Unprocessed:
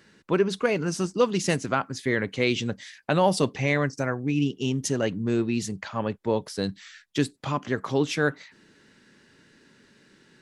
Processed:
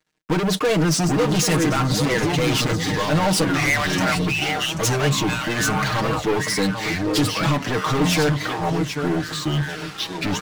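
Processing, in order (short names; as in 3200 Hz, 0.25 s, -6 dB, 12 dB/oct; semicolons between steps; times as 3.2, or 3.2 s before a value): 3.5–5.47 steep high-pass 660 Hz 72 dB/oct; limiter -17 dBFS, peak gain reduction 8.5 dB; feedback echo 0.791 s, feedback 28%, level -15 dB; echoes that change speed 0.676 s, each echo -5 st, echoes 2, each echo -6 dB; sample leveller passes 5; comb 6.5 ms, depth 73%; gate with hold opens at -16 dBFS; record warp 45 rpm, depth 100 cents; gain -4 dB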